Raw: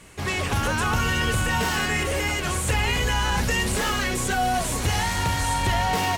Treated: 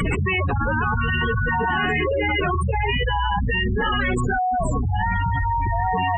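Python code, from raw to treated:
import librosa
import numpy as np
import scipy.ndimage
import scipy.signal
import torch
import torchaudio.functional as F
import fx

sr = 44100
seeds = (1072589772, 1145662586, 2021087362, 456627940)

y = fx.spec_gate(x, sr, threshold_db=-10, keep='strong')
y = fx.peak_eq(y, sr, hz=590.0, db=8.5, octaves=2.8, at=(1.21, 3.39))
y = fx.env_flatten(y, sr, amount_pct=100)
y = y * 10.0 ** (-3.0 / 20.0)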